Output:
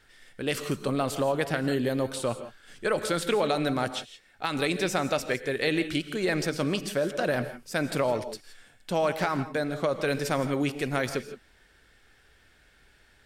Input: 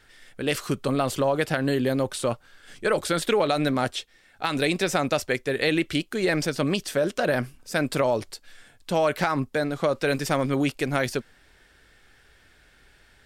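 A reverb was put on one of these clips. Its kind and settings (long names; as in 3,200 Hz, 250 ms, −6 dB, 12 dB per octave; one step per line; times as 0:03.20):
reverb whose tail is shaped and stops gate 190 ms rising, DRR 10.5 dB
level −3.5 dB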